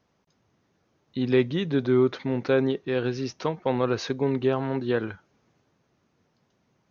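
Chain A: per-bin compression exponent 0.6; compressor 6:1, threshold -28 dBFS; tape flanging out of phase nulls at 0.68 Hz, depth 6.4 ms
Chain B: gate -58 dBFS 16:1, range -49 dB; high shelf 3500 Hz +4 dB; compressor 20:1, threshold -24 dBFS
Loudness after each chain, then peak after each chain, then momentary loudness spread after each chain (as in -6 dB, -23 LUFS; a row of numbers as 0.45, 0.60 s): -36.0, -31.0 LUFS; -19.5, -12.0 dBFS; 17, 4 LU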